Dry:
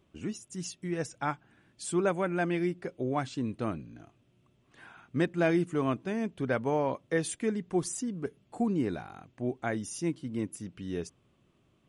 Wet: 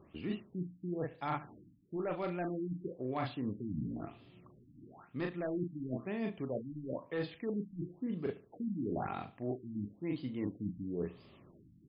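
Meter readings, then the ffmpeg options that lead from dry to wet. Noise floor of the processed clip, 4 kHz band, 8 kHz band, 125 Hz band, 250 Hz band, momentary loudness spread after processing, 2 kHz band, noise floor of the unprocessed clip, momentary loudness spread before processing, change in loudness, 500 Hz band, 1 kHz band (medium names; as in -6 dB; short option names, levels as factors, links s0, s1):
-64 dBFS, -9.0 dB, under -40 dB, -5.5 dB, -6.0 dB, 6 LU, -11.0 dB, -69 dBFS, 11 LU, -7.0 dB, -7.5 dB, -7.0 dB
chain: -filter_complex "[0:a]lowshelf=f=83:g=-6.5,bandreject=f=1500:w=6.1,asplit=2[s0][s1];[s1]aeval=exprs='(mod(10*val(0)+1,2)-1)/10':c=same,volume=0.335[s2];[s0][s2]amix=inputs=2:normalize=0,asplit=2[s3][s4];[s4]adelay=39,volume=0.398[s5];[s3][s5]amix=inputs=2:normalize=0,areverse,acompressor=threshold=0.01:ratio=16,areverse,highshelf=f=3000:g=7,aecho=1:1:73|146|219:0.133|0.0427|0.0137,acrossover=split=2600[s6][s7];[s7]acompressor=threshold=0.00126:ratio=4:attack=1:release=60[s8];[s6][s8]amix=inputs=2:normalize=0,afftfilt=real='re*lt(b*sr/1024,300*pow(5200/300,0.5+0.5*sin(2*PI*1*pts/sr)))':imag='im*lt(b*sr/1024,300*pow(5200/300,0.5+0.5*sin(2*PI*1*pts/sr)))':win_size=1024:overlap=0.75,volume=2.11"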